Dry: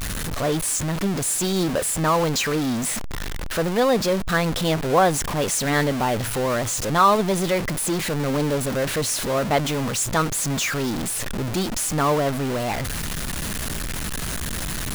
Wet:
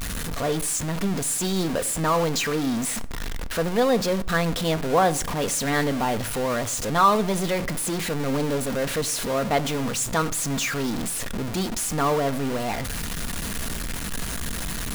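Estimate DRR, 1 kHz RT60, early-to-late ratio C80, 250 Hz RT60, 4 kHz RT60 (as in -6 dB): 11.5 dB, 0.45 s, 23.0 dB, 0.75 s, 0.40 s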